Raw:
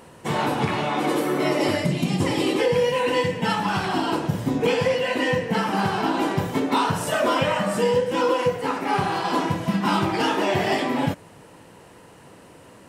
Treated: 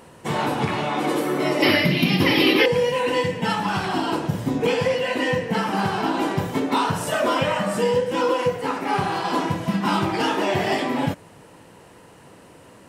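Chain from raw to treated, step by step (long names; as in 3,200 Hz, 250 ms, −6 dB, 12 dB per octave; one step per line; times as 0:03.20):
0:01.62–0:02.66: drawn EQ curve 120 Hz 0 dB, 270 Hz +5 dB, 550 Hz +2 dB, 870 Hz +2 dB, 2,300 Hz +12 dB, 5,300 Hz +7 dB, 7,900 Hz −17 dB, 12,000 Hz +12 dB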